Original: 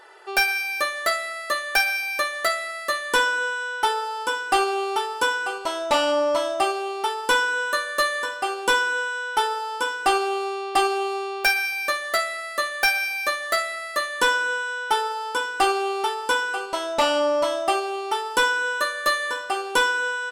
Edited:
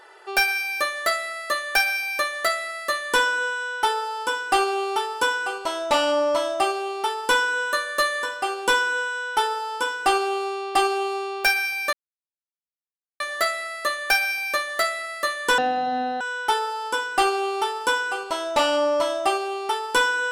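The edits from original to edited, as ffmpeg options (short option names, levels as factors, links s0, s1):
-filter_complex "[0:a]asplit=4[s0][s1][s2][s3];[s0]atrim=end=11.93,asetpts=PTS-STARTPTS,afade=t=out:st=11.926:d=0.004:c=hsin,apad=pad_dur=1.27[s4];[s1]atrim=start=11.93:end=14.314,asetpts=PTS-STARTPTS,afade=t=in:d=0.004:c=hsin[s5];[s2]atrim=start=14.31:end=14.63,asetpts=PTS-STARTPTS,asetrate=22491,aresample=44100[s6];[s3]atrim=start=14.626[s7];[s4][s5]concat=n=2:v=0:a=1[s8];[s8][s6]acrossfade=d=0.004:c1=hsin:c2=hsin[s9];[s9][s7]acrossfade=d=0.004:c1=hsin:c2=hsin"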